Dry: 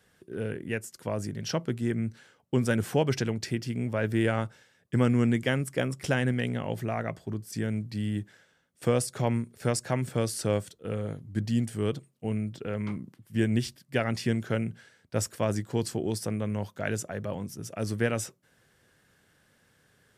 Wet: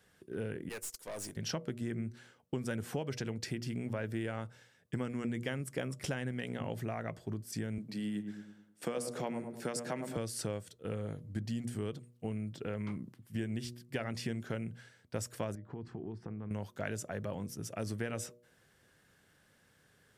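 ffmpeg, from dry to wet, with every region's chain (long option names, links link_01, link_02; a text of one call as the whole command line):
ffmpeg -i in.wav -filter_complex "[0:a]asettb=1/sr,asplit=3[link_01][link_02][link_03];[link_01]atrim=end=0.694[link_04];[link_02]atrim=start=0.69:end=1.37,asetpts=PTS-STARTPTS,afade=type=in:duration=0.004:curve=qsin,afade=type=out:start_time=0.676:duration=0.004:curve=qsin,bass=frequency=250:gain=-13,treble=frequency=4000:gain=13,aeval=exprs='(tanh(63.1*val(0)+0.35)-tanh(0.35))/63.1':channel_layout=same,agate=range=-33dB:threshold=-43dB:ratio=3:release=100:detection=peak[link_05];[link_03]atrim=start=1.366[link_06];[link_04][link_05]acrossfade=duration=0.004:curve1=hsin:curve2=qsin[link_07];[link_07][link_06]acrossfade=duration=0.004:curve1=qsin:curve2=hsin,asettb=1/sr,asplit=3[link_08][link_09][link_10];[link_08]atrim=end=7.784[link_11];[link_09]atrim=start=7.78:end=10.17,asetpts=PTS-STARTPTS,afade=type=in:duration=0.004:curve=qsin,afade=type=out:start_time=2.386:duration=0.004:curve=qsin,highpass=frequency=170:width=0.5412,highpass=frequency=170:width=1.3066,asplit=2[link_12][link_13];[link_13]adelay=105,lowpass=frequency=920:poles=1,volume=-6.5dB,asplit=2[link_14][link_15];[link_15]adelay=105,lowpass=frequency=920:poles=1,volume=0.49,asplit=2[link_16][link_17];[link_17]adelay=105,lowpass=frequency=920:poles=1,volume=0.49,asplit=2[link_18][link_19];[link_19]adelay=105,lowpass=frequency=920:poles=1,volume=0.49,asplit=2[link_20][link_21];[link_21]adelay=105,lowpass=frequency=920:poles=1,volume=0.49,asplit=2[link_22][link_23];[link_23]adelay=105,lowpass=frequency=920:poles=1,volume=0.49[link_24];[link_12][link_14][link_16][link_18][link_20][link_22][link_24]amix=inputs=7:normalize=0,atrim=end_sample=105399[link_25];[link_10]atrim=start=10.166[link_26];[link_11][link_25]acrossfade=duration=0.004:curve1=hsin:curve2=qsin[link_27];[link_27][link_26]acrossfade=duration=0.004:curve1=qsin:curve2=hsin,asettb=1/sr,asplit=3[link_28][link_29][link_30];[link_28]atrim=end=15.554[link_31];[link_29]atrim=start=15.55:end=16.51,asetpts=PTS-STARTPTS,afade=type=in:duration=0.004:curve=qsin,afade=type=out:start_time=0.956:duration=0.004:curve=qsin,lowpass=1300,equalizer=frequency=580:width_type=o:width=0.37:gain=-14,acompressor=threshold=-35dB:ratio=6:attack=3.2:release=140:knee=1:detection=peak[link_32];[link_30]atrim=start=16.506[link_33];[link_31][link_32]acrossfade=duration=0.004:curve1=hsin:curve2=qsin[link_34];[link_34][link_33]acrossfade=duration=0.004:curve1=qsin:curve2=hsin,bandreject=frequency=120.2:width_type=h:width=4,bandreject=frequency=240.4:width_type=h:width=4,bandreject=frequency=360.6:width_type=h:width=4,bandreject=frequency=480.8:width_type=h:width=4,bandreject=frequency=601:width_type=h:width=4,acompressor=threshold=-31dB:ratio=5,volume=-2.5dB" out.wav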